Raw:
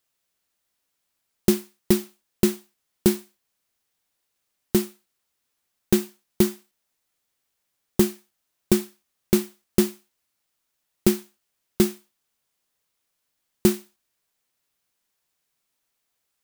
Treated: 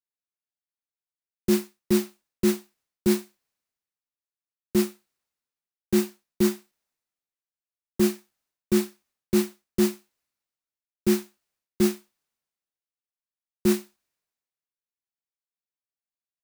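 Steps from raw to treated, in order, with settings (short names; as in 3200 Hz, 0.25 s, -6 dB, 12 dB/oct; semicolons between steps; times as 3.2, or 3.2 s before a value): high shelf 4800 Hz -6.5 dB; reverse; compressor 10:1, threshold -25 dBFS, peak gain reduction 14 dB; reverse; bell 3200 Hz -3.5 dB 0.28 oct; three-band expander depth 70%; gain +4.5 dB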